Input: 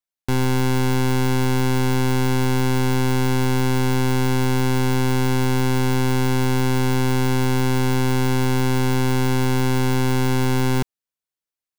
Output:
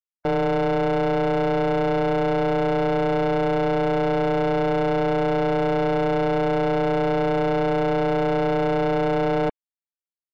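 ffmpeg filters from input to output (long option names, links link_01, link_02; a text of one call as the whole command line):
ffmpeg -i in.wav -af "aeval=exprs='val(0)*sin(2*PI*400*n/s)':channel_layout=same,afftdn=noise_reduction=28:noise_floor=-33,asetrate=50274,aresample=44100" out.wav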